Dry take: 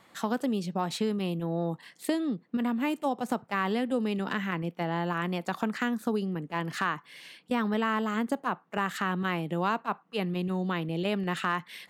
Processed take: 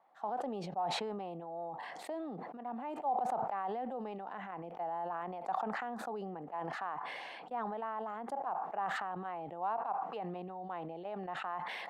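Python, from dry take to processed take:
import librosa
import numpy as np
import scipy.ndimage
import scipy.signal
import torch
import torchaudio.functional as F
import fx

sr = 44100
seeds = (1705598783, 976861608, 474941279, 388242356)

y = fx.bandpass_q(x, sr, hz=770.0, q=5.3)
y = fx.sustainer(y, sr, db_per_s=20.0)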